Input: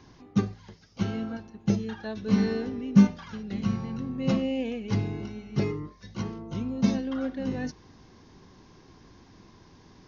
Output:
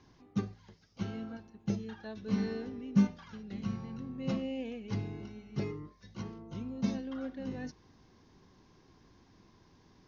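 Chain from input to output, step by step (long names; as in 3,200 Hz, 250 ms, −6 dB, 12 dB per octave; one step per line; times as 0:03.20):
low-pass filter 9,600 Hz
level −8.5 dB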